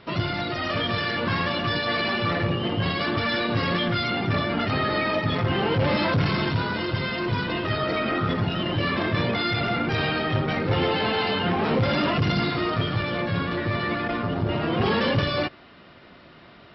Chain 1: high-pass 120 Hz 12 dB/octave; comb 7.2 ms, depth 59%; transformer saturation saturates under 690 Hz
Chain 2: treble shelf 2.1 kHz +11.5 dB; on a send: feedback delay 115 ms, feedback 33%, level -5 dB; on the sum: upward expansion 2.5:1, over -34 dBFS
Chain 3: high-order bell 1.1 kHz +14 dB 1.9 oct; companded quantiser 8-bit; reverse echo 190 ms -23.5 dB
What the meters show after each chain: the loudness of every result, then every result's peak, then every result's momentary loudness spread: -24.5 LUFS, -24.0 LUFS, -15.5 LUFS; -9.5 dBFS, -8.0 dBFS, -1.5 dBFS; 4 LU, 9 LU, 4 LU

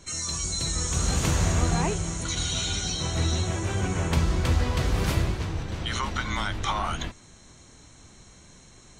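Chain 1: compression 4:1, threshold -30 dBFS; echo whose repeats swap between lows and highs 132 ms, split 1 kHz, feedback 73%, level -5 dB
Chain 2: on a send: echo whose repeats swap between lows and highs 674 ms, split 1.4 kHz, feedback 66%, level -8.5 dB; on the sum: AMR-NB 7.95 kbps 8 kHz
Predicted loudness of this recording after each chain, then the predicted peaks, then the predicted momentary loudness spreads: -32.0 LUFS, -30.5 LUFS; -18.0 dBFS, -14.0 dBFS; 17 LU, 17 LU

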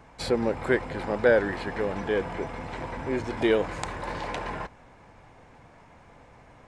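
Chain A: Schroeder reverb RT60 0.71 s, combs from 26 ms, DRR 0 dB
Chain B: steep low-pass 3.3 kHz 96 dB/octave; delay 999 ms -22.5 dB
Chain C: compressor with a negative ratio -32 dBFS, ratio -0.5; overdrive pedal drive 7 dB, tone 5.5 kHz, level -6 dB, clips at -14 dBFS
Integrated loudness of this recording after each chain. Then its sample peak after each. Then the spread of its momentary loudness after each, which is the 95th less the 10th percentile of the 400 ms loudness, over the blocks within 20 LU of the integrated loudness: -25.0 LUFS, -28.0 LUFS, -31.5 LUFS; -4.5 dBFS, -8.5 dBFS, -15.0 dBFS; 13 LU, 12 LU, 20 LU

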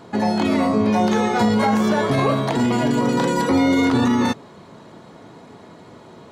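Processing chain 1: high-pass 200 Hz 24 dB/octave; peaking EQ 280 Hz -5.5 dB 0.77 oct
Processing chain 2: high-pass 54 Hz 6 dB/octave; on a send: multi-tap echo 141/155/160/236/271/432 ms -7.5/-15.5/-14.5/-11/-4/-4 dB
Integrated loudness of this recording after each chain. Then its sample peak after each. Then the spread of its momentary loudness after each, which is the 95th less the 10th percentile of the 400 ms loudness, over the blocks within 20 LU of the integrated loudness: -21.5 LUFS, -16.0 LUFS; -9.0 dBFS, -2.5 dBFS; 3 LU, 6 LU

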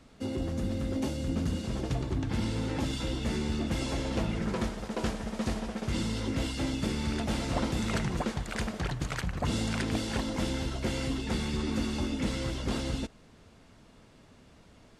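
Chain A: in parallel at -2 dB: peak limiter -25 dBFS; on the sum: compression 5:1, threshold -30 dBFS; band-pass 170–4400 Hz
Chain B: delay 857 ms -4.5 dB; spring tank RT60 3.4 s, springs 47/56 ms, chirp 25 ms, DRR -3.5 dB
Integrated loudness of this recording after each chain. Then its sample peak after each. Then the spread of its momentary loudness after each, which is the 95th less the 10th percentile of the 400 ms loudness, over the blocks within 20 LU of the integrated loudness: -36.5 LUFS, -26.5 LUFS; -21.0 dBFS, -12.5 dBFS; 13 LU, 7 LU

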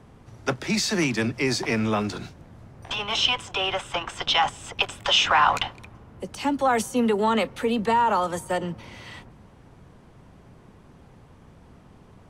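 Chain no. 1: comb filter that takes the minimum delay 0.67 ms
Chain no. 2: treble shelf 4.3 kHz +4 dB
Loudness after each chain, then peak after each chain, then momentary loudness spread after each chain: -25.5 LUFS, -23.0 LUFS; -8.5 dBFS, -6.5 dBFS; 14 LU, 14 LU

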